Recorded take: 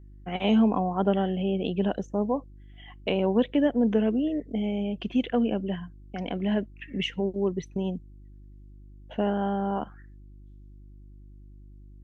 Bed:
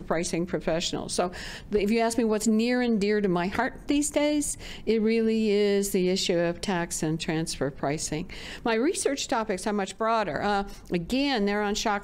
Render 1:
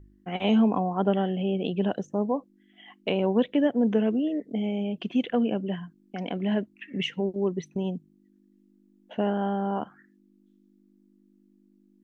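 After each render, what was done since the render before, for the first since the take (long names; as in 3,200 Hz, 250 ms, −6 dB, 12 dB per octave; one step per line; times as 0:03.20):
hum removal 50 Hz, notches 3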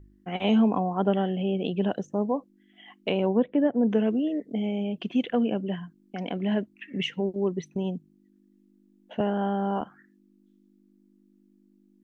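0:03.28–0:03.89: low-pass filter 1,200 Hz → 1,900 Hz
0:09.20–0:09.81: multiband upward and downward compressor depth 70%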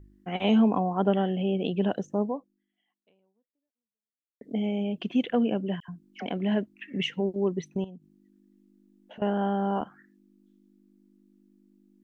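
0:02.22–0:04.41: fade out exponential
0:05.80–0:06.26: all-pass dispersion lows, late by 84 ms, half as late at 1,300 Hz
0:07.84–0:09.22: downward compressor 5 to 1, threshold −43 dBFS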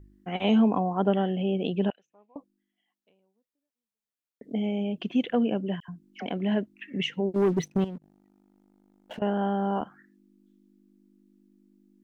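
0:01.90–0:02.36: resonant band-pass 2,500 Hz, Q 7.2
0:07.34–0:09.19: leveller curve on the samples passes 2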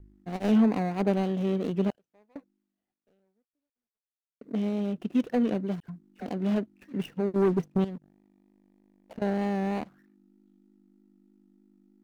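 running median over 41 samples
pitch vibrato 3.2 Hz 34 cents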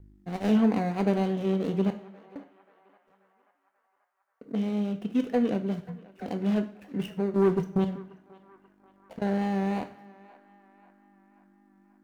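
feedback echo with a band-pass in the loop 535 ms, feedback 65%, band-pass 1,300 Hz, level −18 dB
coupled-rooms reverb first 0.43 s, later 1.7 s, from −22 dB, DRR 7 dB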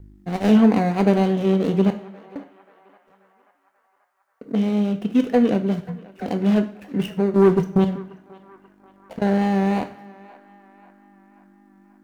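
level +8 dB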